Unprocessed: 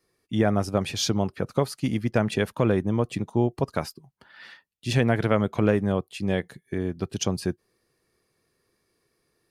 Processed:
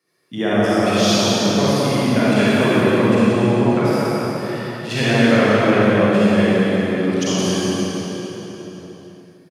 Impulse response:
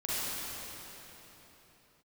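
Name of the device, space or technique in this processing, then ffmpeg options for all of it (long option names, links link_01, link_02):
PA in a hall: -filter_complex "[0:a]asettb=1/sr,asplit=3[link_01][link_02][link_03];[link_01]atrim=end=3.214[link_04];[link_02]atrim=start=3.21:end=3.84,asetpts=PTS-STARTPTS,afade=type=in:duration=0.004:curve=qsin,afade=type=out:start_time=0.626:duration=0.004:curve=qsin,lowpass=2900[link_05];[link_03]atrim=start=3.836[link_06];[link_04][link_05]acrossfade=duration=0.004:curve1=hsin:curve2=qsin[link_07];[link_07][link_06]acrossfade=duration=0.004:curve1=qsin:curve2=hsin,highpass=frequency=130:width=0.5412,highpass=frequency=130:width=1.3066,equalizer=frequency=2300:width_type=o:width=2.1:gain=4.5,aecho=1:1:178:0.501[link_08];[1:a]atrim=start_sample=2205[link_09];[link_08][link_09]afir=irnorm=-1:irlink=0,asplit=5[link_10][link_11][link_12][link_13][link_14];[link_11]adelay=294,afreqshift=69,volume=-22.5dB[link_15];[link_12]adelay=588,afreqshift=138,volume=-27.1dB[link_16];[link_13]adelay=882,afreqshift=207,volume=-31.7dB[link_17];[link_14]adelay=1176,afreqshift=276,volume=-36.2dB[link_18];[link_10][link_15][link_16][link_17][link_18]amix=inputs=5:normalize=0"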